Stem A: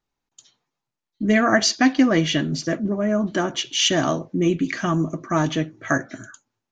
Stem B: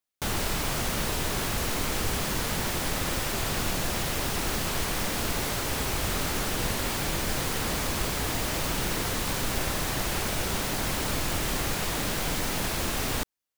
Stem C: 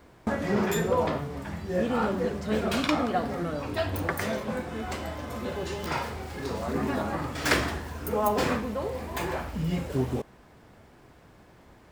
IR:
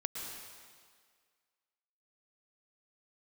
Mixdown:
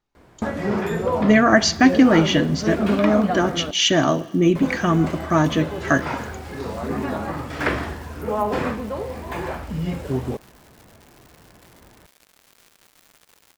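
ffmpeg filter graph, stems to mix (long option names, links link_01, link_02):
-filter_complex "[0:a]volume=2.5dB,asplit=2[link_01][link_02];[link_02]volume=-21dB[link_03];[1:a]highpass=frequency=640:poles=1,acrusher=bits=3:mix=0:aa=0.000001,adelay=1500,volume=-15.5dB,asplit=2[link_04][link_05];[link_05]volume=-7.5dB[link_06];[2:a]acrossover=split=2900[link_07][link_08];[link_08]acompressor=threshold=-44dB:ratio=4:attack=1:release=60[link_09];[link_07][link_09]amix=inputs=2:normalize=0,equalizer=frequency=12000:width=0.54:gain=4,adelay=150,volume=3dB,asplit=3[link_10][link_11][link_12];[link_10]atrim=end=3.71,asetpts=PTS-STARTPTS,afade=type=out:start_time=3.706:duration=0.004:curve=hsin[link_13];[link_11]atrim=start=3.71:end=4.55,asetpts=PTS-STARTPTS,volume=0[link_14];[link_12]atrim=start=4.55,asetpts=PTS-STARTPTS,afade=type=in:duration=0.004:curve=hsin[link_15];[link_13][link_14][link_15]concat=n=3:v=0:a=1[link_16];[3:a]atrim=start_sample=2205[link_17];[link_03][link_06]amix=inputs=2:normalize=0[link_18];[link_18][link_17]afir=irnorm=-1:irlink=0[link_19];[link_01][link_04][link_16][link_19]amix=inputs=4:normalize=0,highshelf=frequency=4700:gain=-6.5"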